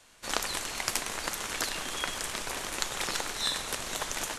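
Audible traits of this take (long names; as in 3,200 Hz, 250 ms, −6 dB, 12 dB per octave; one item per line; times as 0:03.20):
background noise floor −58 dBFS
spectral slope −2.0 dB per octave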